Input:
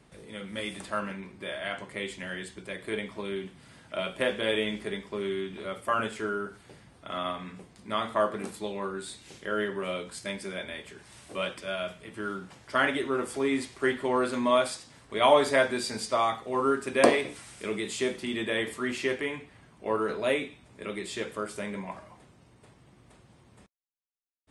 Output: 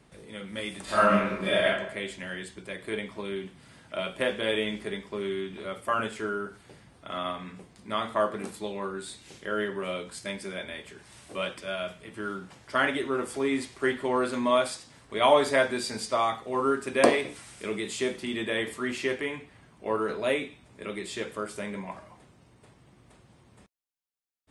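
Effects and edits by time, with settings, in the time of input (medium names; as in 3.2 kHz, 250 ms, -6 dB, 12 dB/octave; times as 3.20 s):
0.84–1.65 s: reverb throw, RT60 0.87 s, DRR -11.5 dB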